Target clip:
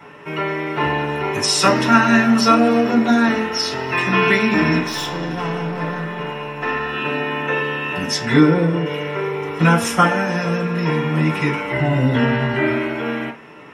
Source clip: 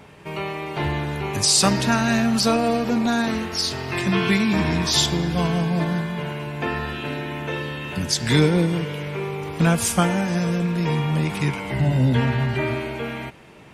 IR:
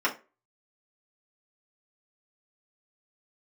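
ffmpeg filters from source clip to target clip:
-filter_complex "[0:a]asettb=1/sr,asplit=3[a][b][c];[a]atrim=end=4.794[d];[b]atrim=start=4.79:end=6.93,asetpts=PTS-STARTPTS,afade=t=in:d=0.004:c=qsin,afade=t=out:st=2.136:d=0.004:c=qsin,aeval=exprs='(tanh(15.8*val(0)+0.6)-tanh(0.6))/15.8':c=same[e];[c]atrim=start=6.926[f];[d][e]acrossfade=d=0.004:c1=hsin:c2=qsin[g];[g][f]acrossfade=d=0.004:c1=qsin:c2=hsin,asettb=1/sr,asplit=3[h][i][j];[h]atrim=end=8.254[k];[i]atrim=start=8.25:end=8.86,asetpts=PTS-STARTPTS,afade=t=in:d=0.004:c=qsin,afade=t=out:st=0.606:d=0.004:c=qsin,highshelf=f=2.2k:g=-9[l];[j]atrim=start=8.856[m];[k][l]acrossfade=d=0.004:c1=hsin:c2=qsin[n];[n][m]acrossfade=d=0.004:c1=qsin:c2=hsin[o];[1:a]atrim=start_sample=2205[p];[o][p]afir=irnorm=-1:irlink=0,volume=-4.5dB"

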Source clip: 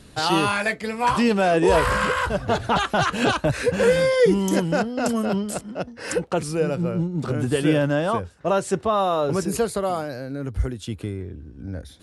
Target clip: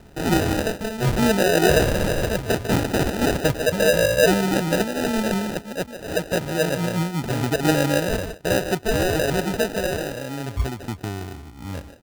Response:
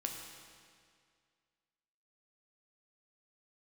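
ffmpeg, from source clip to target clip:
-filter_complex "[0:a]asplit=2[a][b];[b]adelay=150,highpass=300,lowpass=3.4k,asoftclip=type=hard:threshold=-16.5dB,volume=-8dB[c];[a][c]amix=inputs=2:normalize=0,acrusher=samples=40:mix=1:aa=0.000001"

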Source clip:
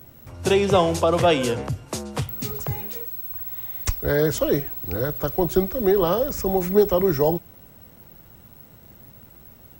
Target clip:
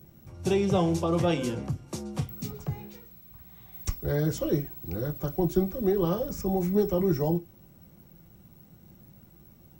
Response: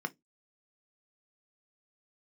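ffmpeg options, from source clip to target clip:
-filter_complex "[0:a]asettb=1/sr,asplit=3[a][b][c];[a]atrim=end=2.504[d];[b]atrim=start=2.5:end=3.73,asetpts=PTS-STARTPTS,afade=t=in:d=0.004:c=qsin,afade=t=out:st=1.226:d=0.004:c=qsin,acrossover=split=5400[e][f];[f]acompressor=threshold=-40dB:ratio=4:attack=1:release=60[g];[e][g]amix=inputs=2:normalize=0[h];[c]atrim=start=3.726[i];[d][h]acrossfade=d=0.004:c1=hsin:c2=qsin[j];[j][i]acrossfade=d=0.004:c1=qsin:c2=hsin,asplit=2[k][l];[l]equalizer=f=4k:w=0.74:g=3.5[m];[1:a]atrim=start_sample=2205,highshelf=f=9.5k:g=-3[n];[m][n]afir=irnorm=-1:irlink=0,volume=-3dB[o];[k][o]amix=inputs=2:normalize=0,volume=-6.5dB"

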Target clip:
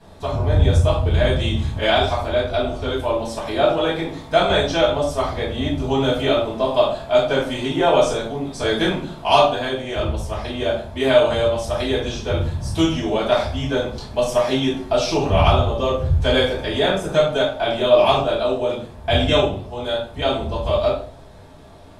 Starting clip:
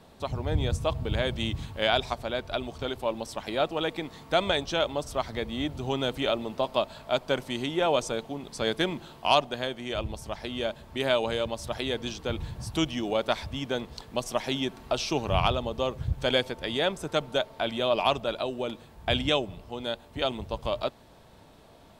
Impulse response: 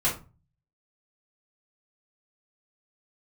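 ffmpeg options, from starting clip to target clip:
-filter_complex "[1:a]atrim=start_sample=2205,asetrate=25137,aresample=44100[a];[0:a][a]afir=irnorm=-1:irlink=0,volume=-6.5dB"

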